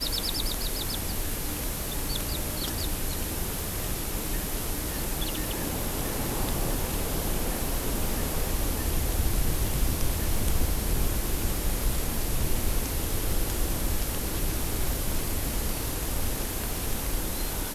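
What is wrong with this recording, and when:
surface crackle 240 per second −33 dBFS

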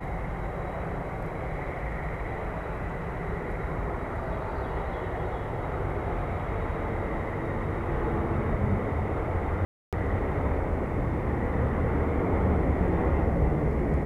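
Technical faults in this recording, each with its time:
0:09.65–0:09.93: drop-out 277 ms

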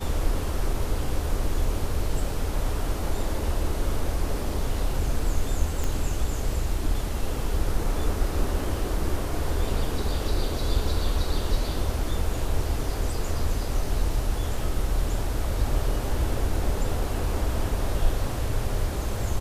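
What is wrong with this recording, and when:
0:05.84: click

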